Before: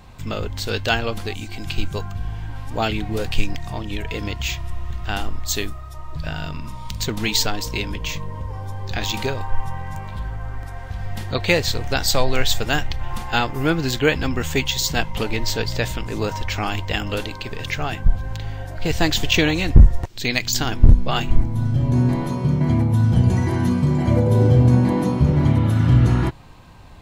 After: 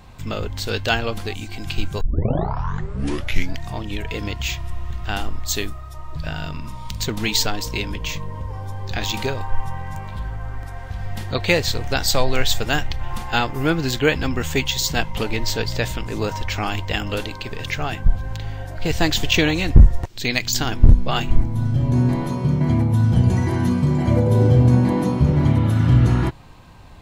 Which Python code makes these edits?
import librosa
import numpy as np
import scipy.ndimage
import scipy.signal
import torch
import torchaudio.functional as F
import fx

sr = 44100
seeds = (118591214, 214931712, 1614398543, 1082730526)

y = fx.edit(x, sr, fx.tape_start(start_s=2.01, length_s=1.62), tone=tone)